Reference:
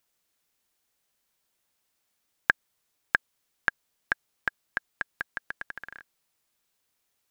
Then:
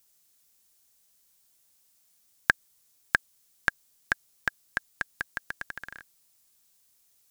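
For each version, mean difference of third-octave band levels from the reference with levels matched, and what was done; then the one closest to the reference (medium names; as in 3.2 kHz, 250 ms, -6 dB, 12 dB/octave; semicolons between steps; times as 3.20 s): 3.5 dB: tone controls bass +5 dB, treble +12 dB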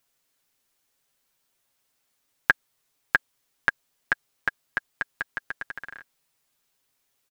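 1.0 dB: comb 7.4 ms, depth 56%; trim +1.5 dB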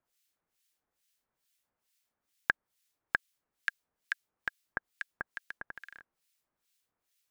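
5.5 dB: harmonic tremolo 2.3 Hz, depth 100%, crossover 1.7 kHz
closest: second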